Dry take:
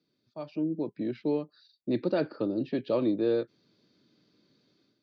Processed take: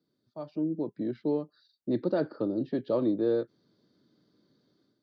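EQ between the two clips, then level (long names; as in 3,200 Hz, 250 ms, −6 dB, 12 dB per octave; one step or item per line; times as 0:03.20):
parametric band 2,500 Hz −13 dB 0.43 octaves
high-shelf EQ 3,800 Hz −7 dB
0.0 dB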